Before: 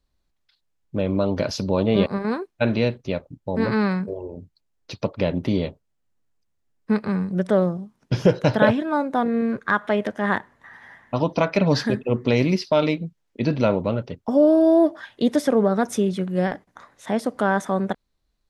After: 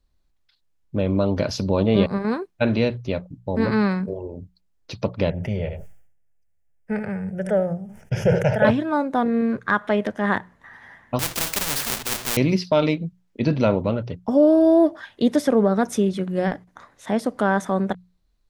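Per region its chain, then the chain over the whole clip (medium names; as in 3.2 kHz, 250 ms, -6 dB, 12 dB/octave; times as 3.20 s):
5.30–8.65 s: static phaser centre 1.1 kHz, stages 6 + delay 76 ms -17 dB + decay stretcher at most 78 dB/s
11.19–12.37 s: square wave that keeps the level + upward compressor, threshold -21 dBFS + spectrum-flattening compressor 4:1
whole clip: bass shelf 120 Hz +6.5 dB; hum notches 60/120/180 Hz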